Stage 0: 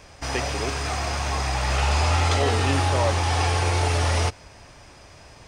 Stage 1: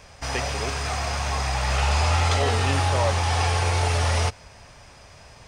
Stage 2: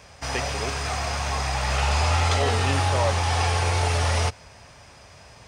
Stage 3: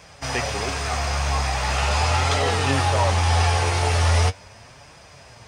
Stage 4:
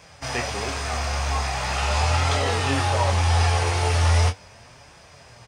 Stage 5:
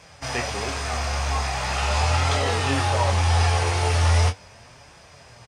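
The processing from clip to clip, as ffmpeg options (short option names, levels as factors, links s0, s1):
-af "equalizer=f=320:t=o:w=0.43:g=-8.5"
-af "highpass=55"
-af "flanger=delay=5.8:depth=8.8:regen=47:speed=0.4:shape=triangular,volume=2"
-filter_complex "[0:a]asplit=2[s0][s1];[s1]adelay=25,volume=0.447[s2];[s0][s2]amix=inputs=2:normalize=0,volume=0.75"
-af "aresample=32000,aresample=44100"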